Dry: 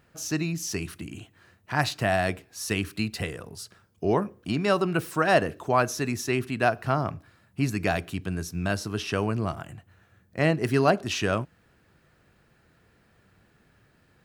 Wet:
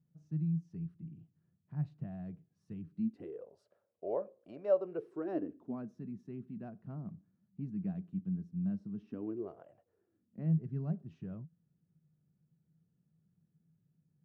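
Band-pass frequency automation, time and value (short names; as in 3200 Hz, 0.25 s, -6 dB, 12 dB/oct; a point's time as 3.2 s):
band-pass, Q 8.3
2.92 s 160 Hz
3.47 s 560 Hz
4.72 s 560 Hz
5.95 s 190 Hz
8.98 s 190 Hz
9.74 s 620 Hz
10.53 s 160 Hz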